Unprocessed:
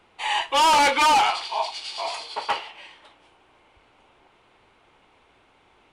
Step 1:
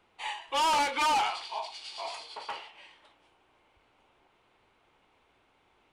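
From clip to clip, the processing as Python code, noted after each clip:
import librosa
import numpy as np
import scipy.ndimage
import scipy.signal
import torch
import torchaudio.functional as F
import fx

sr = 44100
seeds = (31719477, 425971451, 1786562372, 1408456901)

y = fx.end_taper(x, sr, db_per_s=110.0)
y = F.gain(torch.from_numpy(y), -8.5).numpy()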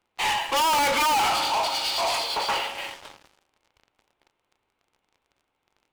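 y = fx.rev_fdn(x, sr, rt60_s=2.8, lf_ratio=1.0, hf_ratio=0.85, size_ms=11.0, drr_db=13.5)
y = fx.leveller(y, sr, passes=5)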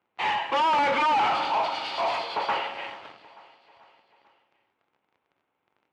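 y = fx.bandpass_edges(x, sr, low_hz=120.0, high_hz=2400.0)
y = fx.echo_feedback(y, sr, ms=440, feedback_pct=56, wet_db=-21.0)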